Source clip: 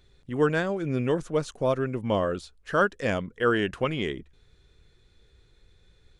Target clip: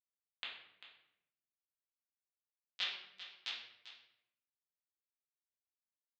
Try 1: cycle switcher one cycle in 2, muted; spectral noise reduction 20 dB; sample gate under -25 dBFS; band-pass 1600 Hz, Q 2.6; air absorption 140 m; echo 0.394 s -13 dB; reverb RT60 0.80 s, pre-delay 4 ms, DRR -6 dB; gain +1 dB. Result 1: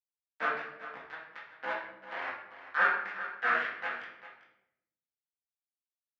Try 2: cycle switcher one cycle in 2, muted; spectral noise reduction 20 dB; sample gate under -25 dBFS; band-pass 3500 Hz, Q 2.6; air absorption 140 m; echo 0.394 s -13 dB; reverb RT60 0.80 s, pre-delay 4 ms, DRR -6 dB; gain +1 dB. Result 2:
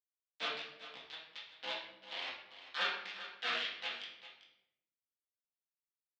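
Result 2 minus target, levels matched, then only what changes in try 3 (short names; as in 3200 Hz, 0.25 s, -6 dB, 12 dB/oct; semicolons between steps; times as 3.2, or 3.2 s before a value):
sample gate: distortion -18 dB
change: sample gate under -13 dBFS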